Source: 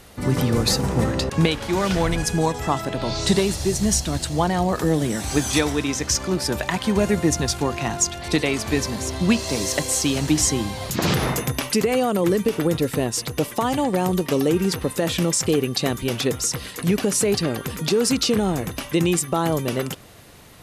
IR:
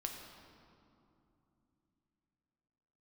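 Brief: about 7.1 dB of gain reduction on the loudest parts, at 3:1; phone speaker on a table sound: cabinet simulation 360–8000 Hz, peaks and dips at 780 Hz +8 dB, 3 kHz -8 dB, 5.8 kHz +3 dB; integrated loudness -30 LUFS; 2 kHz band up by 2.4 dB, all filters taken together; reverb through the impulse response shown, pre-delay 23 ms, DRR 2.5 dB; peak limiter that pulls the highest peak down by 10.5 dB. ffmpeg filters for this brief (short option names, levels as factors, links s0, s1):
-filter_complex "[0:a]equalizer=f=2000:t=o:g=4,acompressor=threshold=0.0708:ratio=3,alimiter=limit=0.15:level=0:latency=1,asplit=2[s0][s1];[1:a]atrim=start_sample=2205,adelay=23[s2];[s1][s2]afir=irnorm=-1:irlink=0,volume=0.794[s3];[s0][s3]amix=inputs=2:normalize=0,highpass=f=360:w=0.5412,highpass=f=360:w=1.3066,equalizer=f=780:t=q:w=4:g=8,equalizer=f=3000:t=q:w=4:g=-8,equalizer=f=5800:t=q:w=4:g=3,lowpass=f=8000:w=0.5412,lowpass=f=8000:w=1.3066,volume=0.708"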